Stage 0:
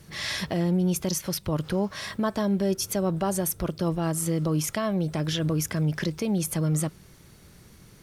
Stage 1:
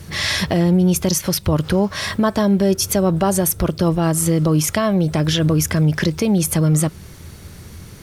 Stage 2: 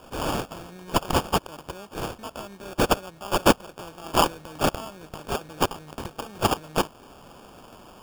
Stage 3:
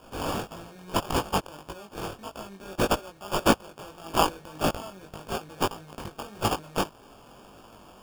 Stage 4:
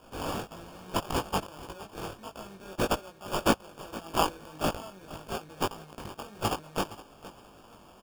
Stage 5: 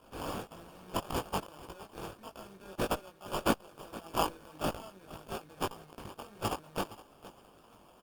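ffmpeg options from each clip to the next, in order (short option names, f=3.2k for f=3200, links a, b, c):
-filter_complex "[0:a]equalizer=f=83:w=3.9:g=11.5,asplit=2[a][b];[b]acompressor=threshold=-31dB:ratio=6,volume=-3dB[c];[a][c]amix=inputs=2:normalize=0,volume=7dB"
-af "aderivative,acrusher=samples=22:mix=1:aa=0.000001"
-af "flanger=delay=18:depth=3.2:speed=1.7"
-af "aecho=1:1:466|932:0.15|0.0329,volume=-3.5dB"
-af "volume=-4dB" -ar 48000 -c:a libopus -b:a 32k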